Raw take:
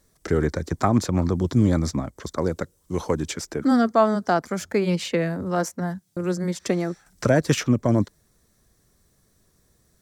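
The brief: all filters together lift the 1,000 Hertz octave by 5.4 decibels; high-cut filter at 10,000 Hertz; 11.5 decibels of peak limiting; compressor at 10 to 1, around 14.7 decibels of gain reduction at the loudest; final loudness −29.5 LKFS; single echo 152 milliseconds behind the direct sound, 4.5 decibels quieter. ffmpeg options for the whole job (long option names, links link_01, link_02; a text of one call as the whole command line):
ffmpeg -i in.wav -af "lowpass=10000,equalizer=frequency=1000:width_type=o:gain=7.5,acompressor=threshold=-23dB:ratio=10,alimiter=limit=-20dB:level=0:latency=1,aecho=1:1:152:0.596,volume=0.5dB" out.wav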